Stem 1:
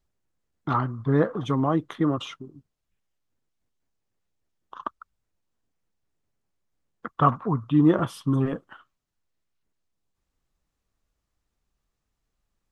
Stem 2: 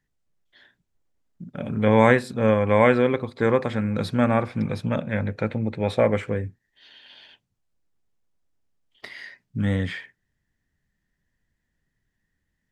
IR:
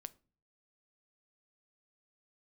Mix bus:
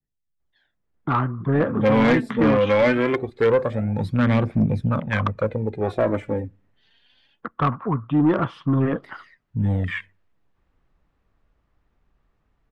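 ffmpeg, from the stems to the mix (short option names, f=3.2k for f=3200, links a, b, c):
-filter_complex "[0:a]lowpass=2.1k,dynaudnorm=f=200:g=5:m=16dB,adelay=400,volume=-4.5dB,asplit=2[a][b];[b]volume=-16dB[c];[1:a]afwtdn=0.0316,aphaser=in_gain=1:out_gain=1:delay=4.6:decay=0.57:speed=0.22:type=triangular,adynamicequalizer=threshold=0.00562:dfrequency=6800:dqfactor=0.7:tfrequency=6800:tqfactor=0.7:attack=5:release=100:ratio=0.375:range=3:mode=boostabove:tftype=highshelf,volume=0dB,asplit=2[d][e];[e]volume=-6.5dB[f];[2:a]atrim=start_sample=2205[g];[c][f]amix=inputs=2:normalize=0[h];[h][g]afir=irnorm=-1:irlink=0[i];[a][d][i]amix=inputs=3:normalize=0,adynamicequalizer=threshold=0.02:dfrequency=2200:dqfactor=0.71:tfrequency=2200:tqfactor=0.71:attack=5:release=100:ratio=0.375:range=3.5:mode=boostabove:tftype=bell,acrossover=split=480[j][k];[k]acompressor=threshold=-20dB:ratio=2.5[l];[j][l]amix=inputs=2:normalize=0,asoftclip=type=tanh:threshold=-11.5dB"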